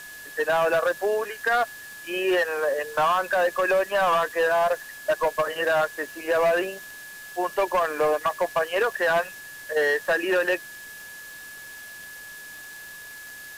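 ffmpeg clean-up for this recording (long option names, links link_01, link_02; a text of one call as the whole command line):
ffmpeg -i in.wav -af "adeclick=threshold=4,bandreject=frequency=1700:width=30,afwtdn=0.0056" out.wav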